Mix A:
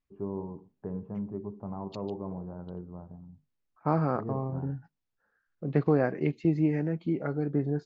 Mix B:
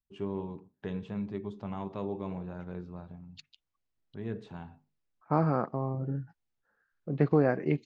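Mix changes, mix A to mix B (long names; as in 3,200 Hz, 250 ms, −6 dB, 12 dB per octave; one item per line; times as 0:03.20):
first voice: remove low-pass filter 1,100 Hz 24 dB per octave
second voice: entry +1.45 s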